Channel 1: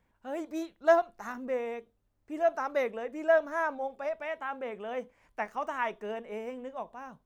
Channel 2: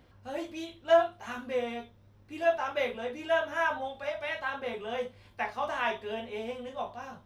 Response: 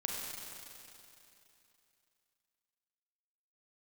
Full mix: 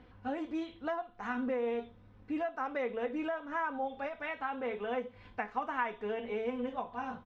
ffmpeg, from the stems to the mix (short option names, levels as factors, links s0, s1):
-filter_complex "[0:a]acompressor=threshold=0.0282:ratio=4,volume=1.06,asplit=2[s0][s1];[1:a]acompressor=threshold=0.0178:ratio=6,volume=1.33[s2];[s1]apad=whole_len=319886[s3];[s2][s3]sidechaincompress=threshold=0.0112:ratio=8:attack=11:release=365[s4];[s0][s4]amix=inputs=2:normalize=0,lowpass=2900,equalizer=f=600:w=5.4:g=-6,aecho=1:1:4:0.44"